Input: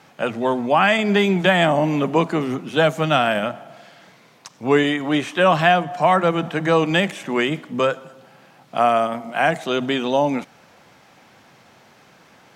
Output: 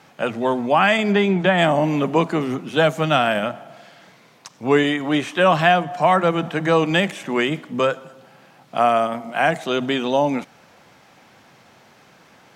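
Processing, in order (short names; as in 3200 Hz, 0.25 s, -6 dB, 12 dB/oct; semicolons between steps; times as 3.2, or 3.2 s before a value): 1.11–1.57 LPF 3300 Hz -> 2000 Hz 6 dB/oct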